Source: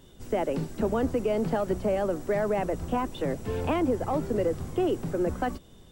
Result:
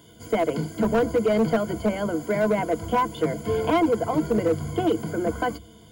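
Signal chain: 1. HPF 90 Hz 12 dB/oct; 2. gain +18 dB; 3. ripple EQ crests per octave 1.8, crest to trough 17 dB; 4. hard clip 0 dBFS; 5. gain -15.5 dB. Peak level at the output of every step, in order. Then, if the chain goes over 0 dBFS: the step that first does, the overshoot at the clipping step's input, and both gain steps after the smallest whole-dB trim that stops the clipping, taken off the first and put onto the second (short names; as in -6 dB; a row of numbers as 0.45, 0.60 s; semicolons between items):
-15.0, +3.0, +9.0, 0.0, -15.5 dBFS; step 2, 9.0 dB; step 2 +9 dB, step 5 -6.5 dB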